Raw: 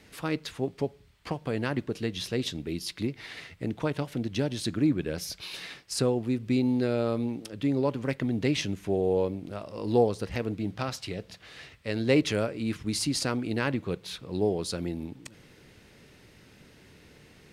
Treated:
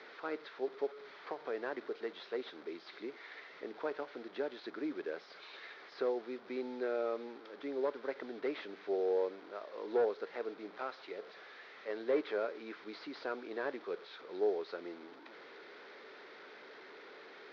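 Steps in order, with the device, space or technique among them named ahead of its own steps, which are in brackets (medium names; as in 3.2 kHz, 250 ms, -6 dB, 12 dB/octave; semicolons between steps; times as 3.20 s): digital answering machine (band-pass 340–3200 Hz; one-bit delta coder 32 kbps, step -40.5 dBFS; cabinet simulation 380–4100 Hz, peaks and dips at 410 Hz +6 dB, 1.4 kHz +4 dB, 2.8 kHz -9 dB); trim -6 dB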